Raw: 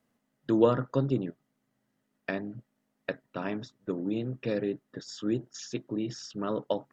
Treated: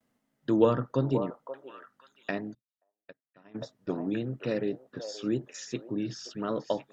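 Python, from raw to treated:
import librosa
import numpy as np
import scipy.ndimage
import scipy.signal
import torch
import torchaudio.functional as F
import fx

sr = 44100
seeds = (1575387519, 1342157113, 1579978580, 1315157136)

y = fx.vibrato(x, sr, rate_hz=0.95, depth_cents=58.0)
y = fx.echo_stepped(y, sr, ms=528, hz=750.0, octaves=1.4, feedback_pct=70, wet_db=-4.5)
y = fx.upward_expand(y, sr, threshold_db=-42.0, expansion=2.5, at=(2.53, 3.54), fade=0.02)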